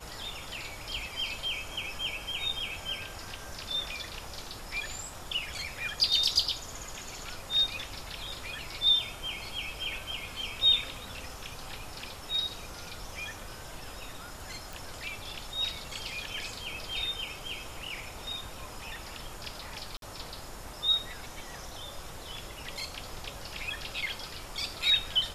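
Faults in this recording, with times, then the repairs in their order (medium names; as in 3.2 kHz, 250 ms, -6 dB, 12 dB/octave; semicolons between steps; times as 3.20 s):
14.73 s: pop
19.97–20.02 s: dropout 52 ms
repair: de-click; interpolate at 19.97 s, 52 ms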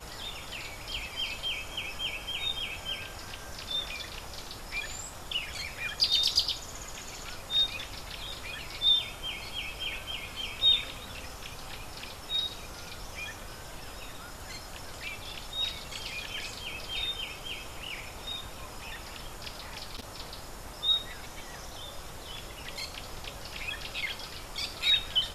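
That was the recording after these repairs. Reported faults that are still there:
nothing left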